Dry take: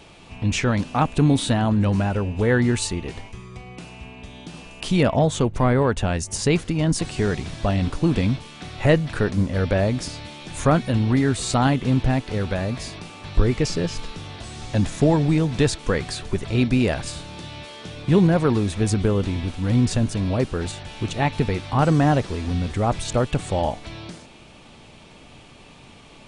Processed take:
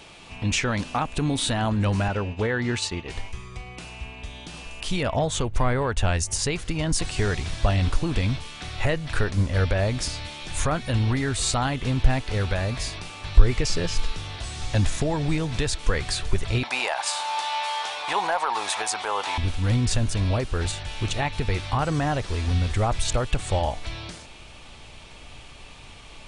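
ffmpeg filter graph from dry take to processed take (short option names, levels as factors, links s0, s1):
-filter_complex "[0:a]asettb=1/sr,asplit=3[s0][s1][s2];[s0]atrim=end=2.084[s3];[s1]atrim=start=2.08:end=3.1,asetpts=PTS-STARTPTS,afade=t=in:d=0.004:c=qsin,afade=t=out:st=1.016:d=0.004:c=qsin,highpass=100,lowpass=5600,agate=range=0.0224:threshold=0.0355:ratio=3:release=100:detection=peak[s4];[s2]atrim=start=3.096[s5];[s3][s4]acrossfade=d=0.004:c1=hsin:c2=qsin[s6];[s6][s5]acrossfade=d=0.004:c1=qsin:c2=hsin,asettb=1/sr,asplit=3[s7][s8][s9];[s7]atrim=end=16.634[s10];[s8]atrim=start=16.63:end=19.38,asetpts=PTS-STARTPTS,afade=t=in:d=0.004:c=qsin,afade=t=out:st=2.746:d=0.004:c=qsin,highpass=f=850:t=q:w=4.7,acontrast=30[s11];[s9]atrim=start=19.376[s12];[s10][s11]acrossfade=d=0.004:c1=hsin:c2=qsin[s13];[s13][s12]acrossfade=d=0.004:c1=qsin:c2=hsin,tiltshelf=f=720:g=-3.5,alimiter=limit=0.2:level=0:latency=1:release=196,asubboost=boost=4.5:cutoff=83"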